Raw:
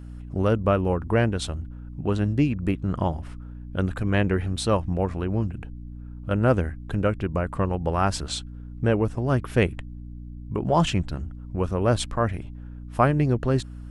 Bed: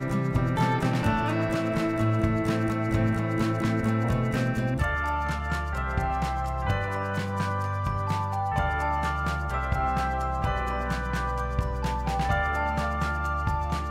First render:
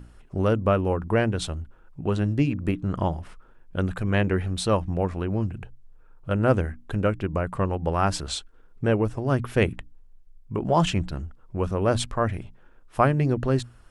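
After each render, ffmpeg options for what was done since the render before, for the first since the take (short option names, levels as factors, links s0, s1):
-af "bandreject=f=60:t=h:w=6,bandreject=f=120:t=h:w=6,bandreject=f=180:t=h:w=6,bandreject=f=240:t=h:w=6,bandreject=f=300:t=h:w=6"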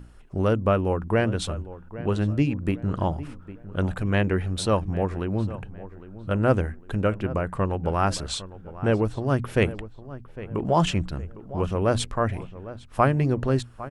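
-filter_complex "[0:a]asplit=2[s0][s1];[s1]adelay=806,lowpass=f=2100:p=1,volume=0.168,asplit=2[s2][s3];[s3]adelay=806,lowpass=f=2100:p=1,volume=0.39,asplit=2[s4][s5];[s5]adelay=806,lowpass=f=2100:p=1,volume=0.39[s6];[s0][s2][s4][s6]amix=inputs=4:normalize=0"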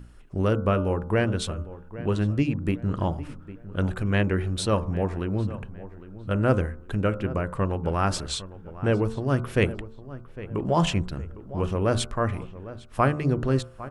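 -af "equalizer=f=770:t=o:w=0.77:g=-3,bandreject=f=74.54:t=h:w=4,bandreject=f=149.08:t=h:w=4,bandreject=f=223.62:t=h:w=4,bandreject=f=298.16:t=h:w=4,bandreject=f=372.7:t=h:w=4,bandreject=f=447.24:t=h:w=4,bandreject=f=521.78:t=h:w=4,bandreject=f=596.32:t=h:w=4,bandreject=f=670.86:t=h:w=4,bandreject=f=745.4:t=h:w=4,bandreject=f=819.94:t=h:w=4,bandreject=f=894.48:t=h:w=4,bandreject=f=969.02:t=h:w=4,bandreject=f=1043.56:t=h:w=4,bandreject=f=1118.1:t=h:w=4,bandreject=f=1192.64:t=h:w=4,bandreject=f=1267.18:t=h:w=4,bandreject=f=1341.72:t=h:w=4,bandreject=f=1416.26:t=h:w=4,bandreject=f=1490.8:t=h:w=4"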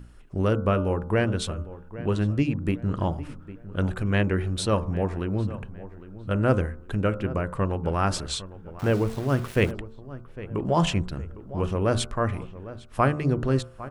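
-filter_complex "[0:a]asettb=1/sr,asplit=3[s0][s1][s2];[s0]atrim=end=8.794[s3];[s1]atrim=start=8.79:end=9.71,asetpts=PTS-STARTPTS,afade=t=in:d=0.004:c=qsin,afade=t=out:st=0.916:d=0.004:c=qsin,aeval=exprs='val(0)*gte(abs(val(0)),0.015)':c=same[s4];[s2]atrim=start=9.706[s5];[s3][s4]acrossfade=d=0.004:c1=hsin:c2=qsin[s6];[s6][s5]acrossfade=d=0.004:c1=qsin:c2=hsin"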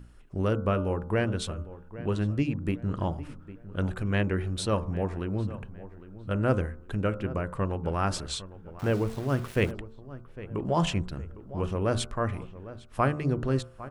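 -af "volume=0.668"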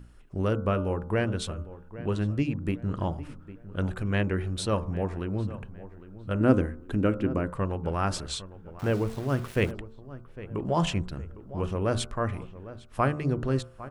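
-filter_complex "[0:a]asettb=1/sr,asplit=3[s0][s1][s2];[s0]atrim=end=6.404[s3];[s1]atrim=start=6.4:end=7.51,asetpts=PTS-STARTPTS,afade=t=in:d=0.004:c=qsin,afade=t=out:st=1.106:d=0.004:c=qsin,equalizer=f=280:t=o:w=0.77:g=10.5[s4];[s2]atrim=start=7.506[s5];[s3][s4]acrossfade=d=0.004:c1=hsin:c2=qsin[s6];[s6][s5]acrossfade=d=0.004:c1=qsin:c2=hsin"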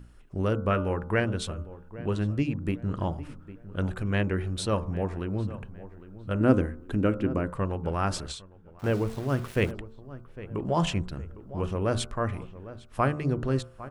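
-filter_complex "[0:a]asettb=1/sr,asplit=3[s0][s1][s2];[s0]atrim=end=0.704[s3];[s1]atrim=start=0.7:end=1.2,asetpts=PTS-STARTPTS,afade=t=in:d=0.004:c=qsin,afade=t=out:st=0.496:d=0.004:c=qsin,equalizer=f=1800:t=o:w=1.1:g=7.5[s4];[s2]atrim=start=1.196[s5];[s3][s4]acrossfade=d=0.004:c1=hsin:c2=qsin[s6];[s6][s5]acrossfade=d=0.004:c1=qsin:c2=hsin,asplit=3[s7][s8][s9];[s7]afade=t=out:st=8.31:d=0.02[s10];[s8]agate=range=0.447:threshold=0.0251:ratio=16:release=100:detection=peak,afade=t=in:st=8.31:d=0.02,afade=t=out:st=8.99:d=0.02[s11];[s9]afade=t=in:st=8.99:d=0.02[s12];[s10][s11][s12]amix=inputs=3:normalize=0"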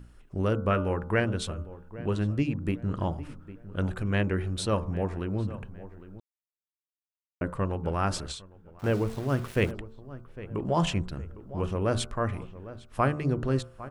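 -filter_complex "[0:a]asplit=3[s0][s1][s2];[s0]atrim=end=6.2,asetpts=PTS-STARTPTS,afade=t=out:st=6.196:d=0.004:c=hsin[s3];[s1]atrim=start=6.2:end=7.41,asetpts=PTS-STARTPTS,volume=0[s4];[s2]atrim=start=7.41,asetpts=PTS-STARTPTS,afade=t=in:d=0.004:c=hsin[s5];[s3][s4][s5]concat=n=3:v=0:a=1"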